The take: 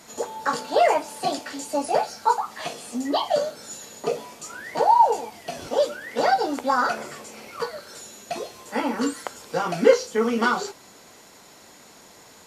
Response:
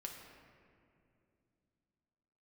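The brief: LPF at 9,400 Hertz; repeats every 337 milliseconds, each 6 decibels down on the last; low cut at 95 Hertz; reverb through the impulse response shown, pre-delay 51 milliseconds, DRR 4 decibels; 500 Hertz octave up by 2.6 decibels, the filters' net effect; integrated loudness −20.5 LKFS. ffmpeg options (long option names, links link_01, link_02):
-filter_complex "[0:a]highpass=95,lowpass=9400,equalizer=frequency=500:width_type=o:gain=3,aecho=1:1:337|674|1011|1348|1685|2022:0.501|0.251|0.125|0.0626|0.0313|0.0157,asplit=2[link_01][link_02];[1:a]atrim=start_sample=2205,adelay=51[link_03];[link_02][link_03]afir=irnorm=-1:irlink=0,volume=-1dB[link_04];[link_01][link_04]amix=inputs=2:normalize=0"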